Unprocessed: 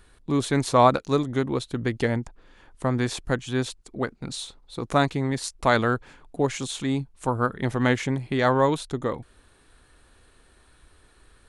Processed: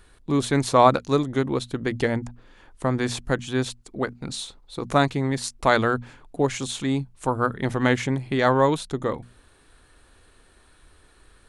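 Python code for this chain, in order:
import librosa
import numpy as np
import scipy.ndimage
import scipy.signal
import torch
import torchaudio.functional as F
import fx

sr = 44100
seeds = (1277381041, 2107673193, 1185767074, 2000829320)

y = fx.hum_notches(x, sr, base_hz=60, count=4)
y = y * librosa.db_to_amplitude(1.5)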